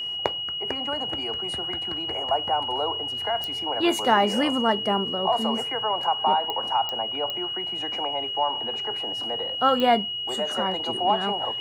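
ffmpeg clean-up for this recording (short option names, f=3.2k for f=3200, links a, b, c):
-af "adeclick=t=4,bandreject=f=2.9k:w=30"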